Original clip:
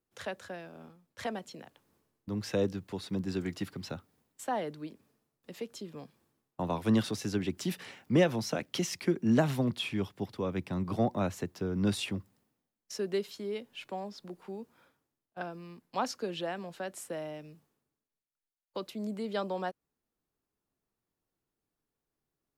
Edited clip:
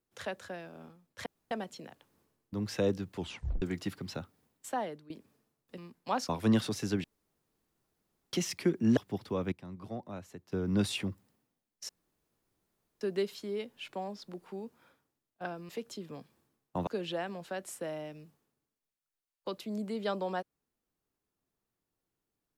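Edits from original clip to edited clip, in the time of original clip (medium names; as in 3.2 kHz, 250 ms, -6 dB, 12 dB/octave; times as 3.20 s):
1.26 s: insert room tone 0.25 s
2.93 s: tape stop 0.44 s
4.46–4.85 s: fade out, to -17 dB
5.53–6.71 s: swap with 15.65–16.16 s
7.46–8.75 s: room tone
9.39–10.05 s: delete
10.60–11.60 s: gain -12 dB
12.97 s: insert room tone 1.12 s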